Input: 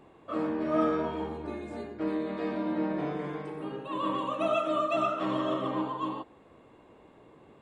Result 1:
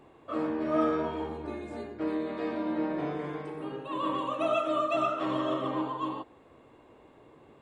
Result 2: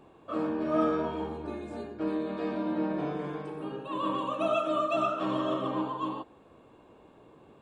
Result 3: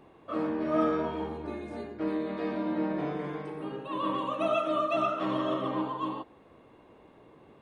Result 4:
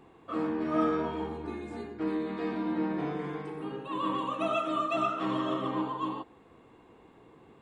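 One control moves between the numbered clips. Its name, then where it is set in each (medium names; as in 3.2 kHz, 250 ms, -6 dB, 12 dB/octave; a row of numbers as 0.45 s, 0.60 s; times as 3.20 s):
band-stop, frequency: 190 Hz, 2 kHz, 7.5 kHz, 590 Hz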